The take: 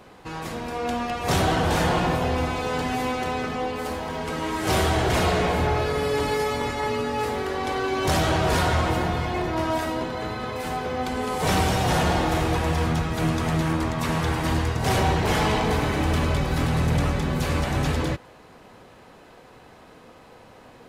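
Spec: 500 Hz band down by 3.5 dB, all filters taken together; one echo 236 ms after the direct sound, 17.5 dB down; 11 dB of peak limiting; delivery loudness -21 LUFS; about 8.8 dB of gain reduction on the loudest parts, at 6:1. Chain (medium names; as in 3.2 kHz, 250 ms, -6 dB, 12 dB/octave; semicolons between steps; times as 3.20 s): peaking EQ 500 Hz -4.5 dB; compression 6:1, threshold -29 dBFS; peak limiter -31.5 dBFS; delay 236 ms -17.5 dB; trim +18 dB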